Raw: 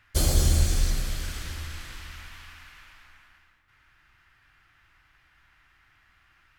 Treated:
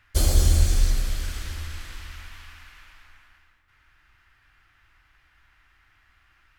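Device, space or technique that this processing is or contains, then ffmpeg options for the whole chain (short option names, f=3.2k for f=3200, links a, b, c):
low shelf boost with a cut just above: -af "lowshelf=f=97:g=5,equalizer=f=150:t=o:w=0.72:g=-5.5"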